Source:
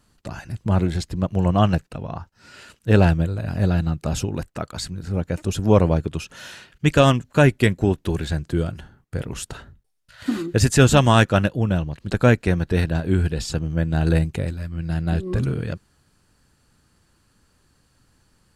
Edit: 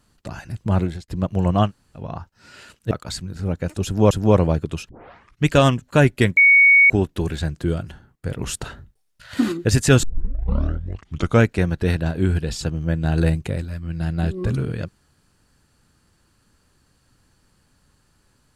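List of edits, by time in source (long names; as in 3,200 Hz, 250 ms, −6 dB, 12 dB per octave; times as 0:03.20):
0:00.80–0:01.08: fade out
0:01.67–0:01.98: fill with room tone, crossfade 0.10 s
0:02.91–0:04.59: remove
0:05.53–0:05.79: repeat, 2 plays
0:06.31: tape start 0.55 s
0:07.79: insert tone 2,230 Hz −8.5 dBFS 0.53 s
0:09.27–0:10.41: clip gain +4 dB
0:10.92: tape start 1.43 s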